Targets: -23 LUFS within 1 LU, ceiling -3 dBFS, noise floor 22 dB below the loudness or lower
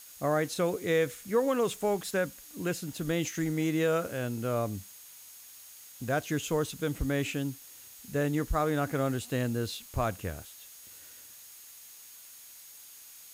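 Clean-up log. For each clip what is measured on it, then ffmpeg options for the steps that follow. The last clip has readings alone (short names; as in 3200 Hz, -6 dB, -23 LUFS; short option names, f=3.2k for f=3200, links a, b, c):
steady tone 6600 Hz; tone level -57 dBFS; noise floor -51 dBFS; noise floor target -53 dBFS; loudness -31.0 LUFS; peak -15.0 dBFS; loudness target -23.0 LUFS
-> -af "bandreject=f=6.6k:w=30"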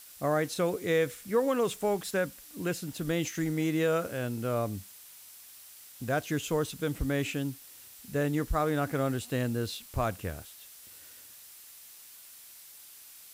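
steady tone none; noise floor -51 dBFS; noise floor target -53 dBFS
-> -af "afftdn=nr=6:nf=-51"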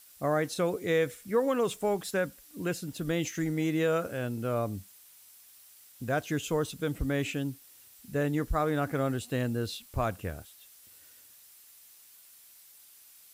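noise floor -56 dBFS; loudness -31.0 LUFS; peak -15.0 dBFS; loudness target -23.0 LUFS
-> -af "volume=8dB"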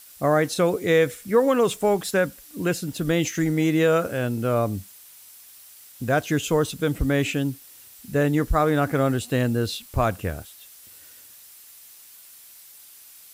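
loudness -23.0 LUFS; peak -7.0 dBFS; noise floor -48 dBFS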